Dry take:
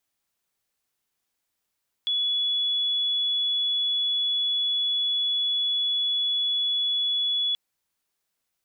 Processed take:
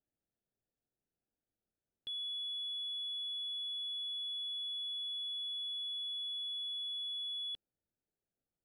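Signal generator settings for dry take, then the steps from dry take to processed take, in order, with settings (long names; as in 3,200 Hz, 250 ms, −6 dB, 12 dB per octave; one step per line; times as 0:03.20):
tone sine 3,400 Hz −22 dBFS 5.48 s
adaptive Wiener filter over 41 samples
high-shelf EQ 3,100 Hz −11 dB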